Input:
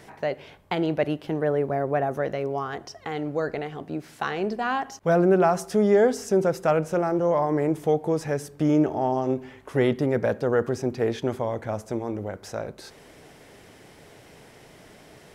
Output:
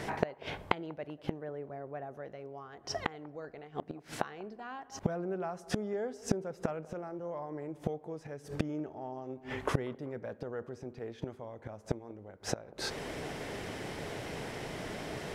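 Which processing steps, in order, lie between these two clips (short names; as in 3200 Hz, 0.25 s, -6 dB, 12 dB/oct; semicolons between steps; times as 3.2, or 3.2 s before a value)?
high shelf 8500 Hz -10.5 dB; flipped gate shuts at -25 dBFS, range -27 dB; band-limited delay 0.192 s, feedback 52%, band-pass 630 Hz, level -19.5 dB; gain +9.5 dB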